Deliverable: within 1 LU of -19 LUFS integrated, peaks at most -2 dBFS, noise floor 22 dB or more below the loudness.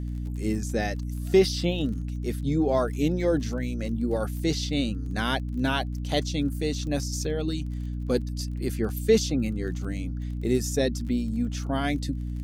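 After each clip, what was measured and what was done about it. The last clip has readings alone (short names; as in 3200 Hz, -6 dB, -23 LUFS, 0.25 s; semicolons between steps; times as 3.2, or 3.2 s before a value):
ticks 30/s; hum 60 Hz; harmonics up to 300 Hz; hum level -29 dBFS; loudness -27.5 LUFS; peak -9.0 dBFS; loudness target -19.0 LUFS
-> de-click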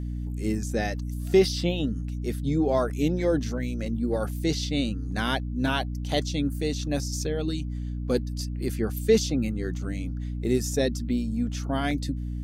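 ticks 0/s; hum 60 Hz; harmonics up to 300 Hz; hum level -29 dBFS
-> de-hum 60 Hz, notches 5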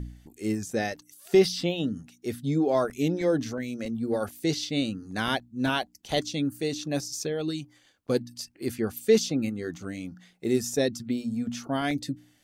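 hum none; loudness -28.5 LUFS; peak -10.0 dBFS; loudness target -19.0 LUFS
-> gain +9.5 dB; limiter -2 dBFS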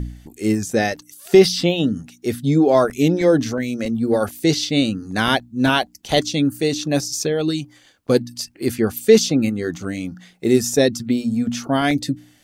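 loudness -19.5 LUFS; peak -2.0 dBFS; noise floor -53 dBFS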